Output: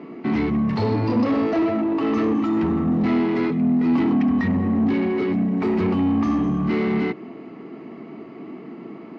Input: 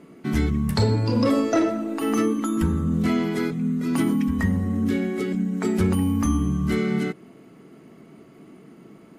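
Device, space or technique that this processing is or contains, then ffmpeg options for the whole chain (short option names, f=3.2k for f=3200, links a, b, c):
overdrive pedal into a guitar cabinet: -filter_complex "[0:a]equalizer=f=330:w=6:g=4,asplit=2[a][b];[b]highpass=f=720:p=1,volume=28dB,asoftclip=type=tanh:threshold=-8dB[c];[a][c]amix=inputs=2:normalize=0,lowpass=f=1.3k:p=1,volume=-6dB,highpass=87,equalizer=f=98:t=q:w=4:g=6,equalizer=f=240:t=q:w=4:g=5,equalizer=f=550:t=q:w=4:g=-5,equalizer=f=1.5k:t=q:w=4:g=-8,equalizer=f=3.4k:t=q:w=4:g=-6,lowpass=f=4.5k:w=0.5412,lowpass=f=4.5k:w=1.3066,volume=-5.5dB"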